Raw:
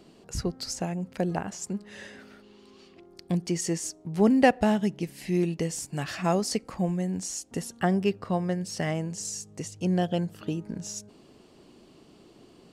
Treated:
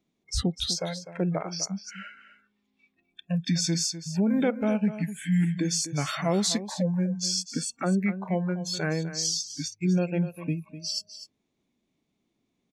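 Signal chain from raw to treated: formant shift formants -4 st; high shelf 5900 Hz +8 dB; limiter -20.5 dBFS, peak gain reduction 11.5 dB; spectral noise reduction 27 dB; on a send: echo 0.251 s -12.5 dB; on the sum: gain +4 dB

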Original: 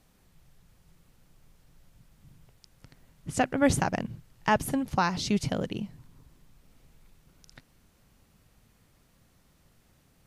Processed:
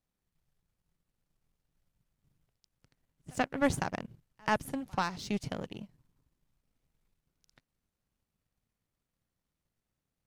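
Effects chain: pre-echo 86 ms -21 dB; power-law curve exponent 1.4; gain -2.5 dB

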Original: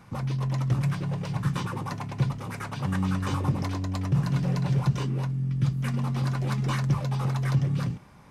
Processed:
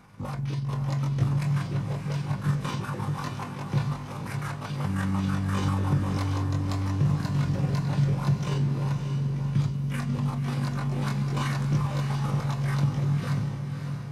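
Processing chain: granular stretch 1.7×, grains 98 ms; diffused feedback echo 0.584 s, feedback 45%, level -6 dB

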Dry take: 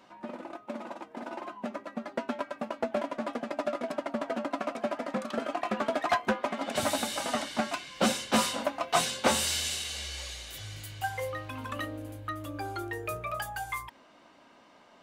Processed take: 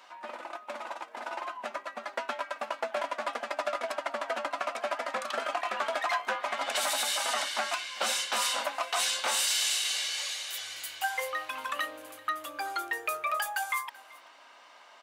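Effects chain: HPF 860 Hz 12 dB/oct; limiter -26 dBFS, peak gain reduction 11.5 dB; echo 0.383 s -22 dB; gain +6.5 dB

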